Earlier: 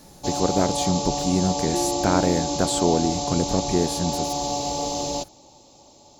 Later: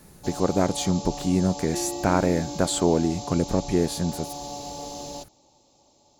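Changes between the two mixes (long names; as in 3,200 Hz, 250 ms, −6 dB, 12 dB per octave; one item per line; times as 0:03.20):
first sound −9.5 dB
second sound: add spectral tilt +3 dB per octave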